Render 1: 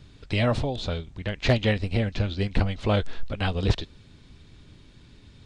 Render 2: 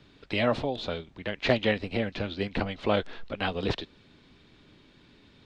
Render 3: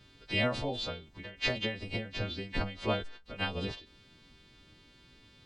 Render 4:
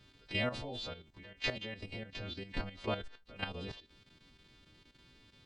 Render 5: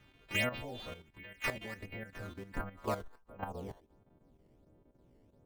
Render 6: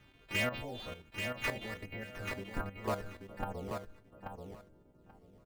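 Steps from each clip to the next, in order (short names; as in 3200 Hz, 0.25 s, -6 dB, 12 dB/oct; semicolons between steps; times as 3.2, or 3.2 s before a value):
three-band isolator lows -14 dB, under 190 Hz, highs -13 dB, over 4700 Hz
frequency quantiser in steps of 2 st; low shelf 120 Hz +11.5 dB; ending taper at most 120 dB/s; gain -5 dB
level quantiser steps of 10 dB; gain -2 dB
low-pass sweep 2500 Hz -> 630 Hz, 1.18–4.36; in parallel at -5 dB: decimation with a swept rate 10×, swing 160% 1.4 Hz; on the sum: gain -5 dB
overloaded stage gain 27.5 dB; on a send: feedback echo 0.834 s, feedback 16%, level -5.5 dB; on the sum: gain +1 dB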